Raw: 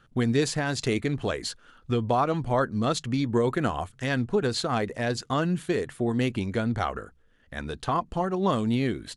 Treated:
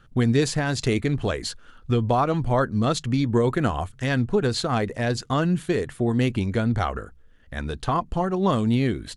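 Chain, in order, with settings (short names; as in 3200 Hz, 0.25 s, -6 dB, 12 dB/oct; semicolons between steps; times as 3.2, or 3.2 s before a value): low shelf 100 Hz +9.5 dB; gain +2 dB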